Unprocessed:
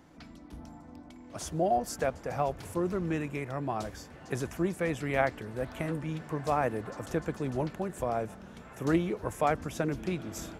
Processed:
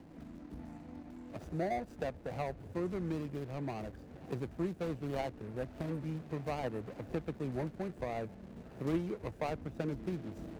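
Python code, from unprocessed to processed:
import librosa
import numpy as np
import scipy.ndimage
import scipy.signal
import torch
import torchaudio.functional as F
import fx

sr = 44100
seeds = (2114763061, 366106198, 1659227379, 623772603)

y = scipy.signal.medfilt(x, 41)
y = fx.band_squash(y, sr, depth_pct=40)
y = y * librosa.db_to_amplitude(-4.5)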